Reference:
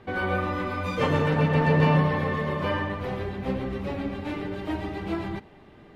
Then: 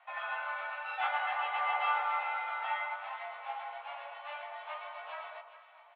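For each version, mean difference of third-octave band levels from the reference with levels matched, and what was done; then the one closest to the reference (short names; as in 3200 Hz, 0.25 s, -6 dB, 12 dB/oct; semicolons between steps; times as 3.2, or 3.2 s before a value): 15.5 dB: doubler 17 ms -2.5 dB; echo with dull and thin repeats by turns 0.206 s, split 970 Hz, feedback 55%, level -8 dB; mistuned SSB +290 Hz 430–3100 Hz; gain -8.5 dB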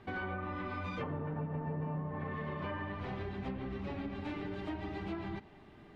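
5.0 dB: treble ducked by the level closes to 1000 Hz, closed at -19 dBFS; bell 510 Hz -10 dB 0.21 oct; compressor 5:1, threshold -31 dBFS, peak gain reduction 13 dB; gain -5 dB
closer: second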